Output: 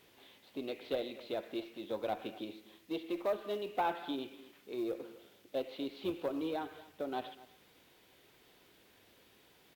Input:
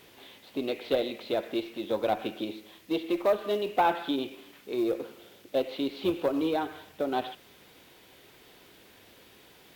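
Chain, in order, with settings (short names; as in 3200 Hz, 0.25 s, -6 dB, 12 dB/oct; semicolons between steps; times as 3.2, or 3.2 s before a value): echo 0.245 s -19.5 dB; gain -9 dB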